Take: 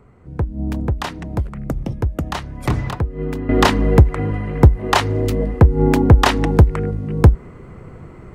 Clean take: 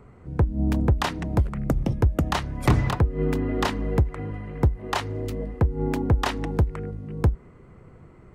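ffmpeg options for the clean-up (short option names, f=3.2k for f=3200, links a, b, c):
-af "asetnsamples=n=441:p=0,asendcmd='3.49 volume volume -11dB',volume=0dB"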